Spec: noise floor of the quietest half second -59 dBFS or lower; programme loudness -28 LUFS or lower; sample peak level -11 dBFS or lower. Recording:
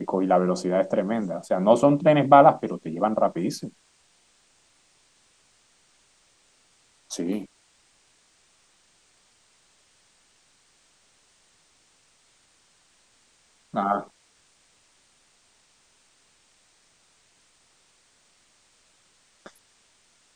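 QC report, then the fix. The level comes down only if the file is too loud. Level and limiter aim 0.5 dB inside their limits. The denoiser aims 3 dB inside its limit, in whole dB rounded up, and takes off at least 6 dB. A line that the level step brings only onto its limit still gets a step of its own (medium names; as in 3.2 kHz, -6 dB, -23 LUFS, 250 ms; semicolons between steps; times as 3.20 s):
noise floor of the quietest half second -63 dBFS: pass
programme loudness -22.0 LUFS: fail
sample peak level -2.0 dBFS: fail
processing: trim -6.5 dB; peak limiter -11.5 dBFS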